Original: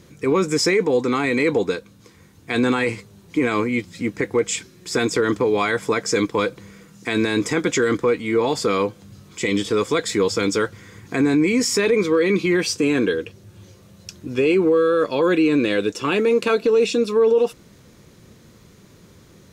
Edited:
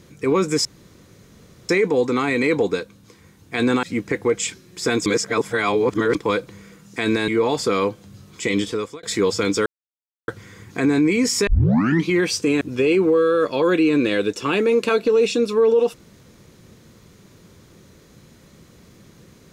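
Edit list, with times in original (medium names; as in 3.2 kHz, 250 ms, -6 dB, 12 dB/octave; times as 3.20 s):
0.65 s: insert room tone 1.04 s
2.79–3.92 s: delete
5.15–6.24 s: reverse
7.37–8.26 s: delete
9.57–10.01 s: fade out
10.64 s: insert silence 0.62 s
11.83 s: tape start 0.60 s
12.97–14.20 s: delete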